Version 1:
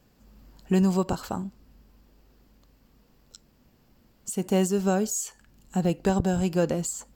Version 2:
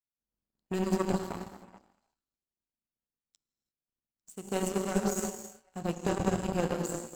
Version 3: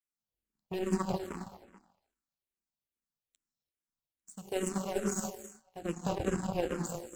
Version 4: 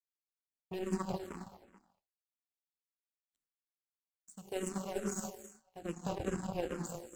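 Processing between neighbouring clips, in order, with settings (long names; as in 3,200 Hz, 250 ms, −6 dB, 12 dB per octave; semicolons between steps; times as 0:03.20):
echo through a band-pass that steps 212 ms, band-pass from 290 Hz, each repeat 1.4 octaves, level −3.5 dB; reverb whose tail is shaped and stops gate 380 ms flat, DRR 0 dB; power curve on the samples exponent 2; level −2.5 dB
frequency shifter mixed with the dry sound −2.4 Hz
noise gate with hold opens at −56 dBFS; level −4.5 dB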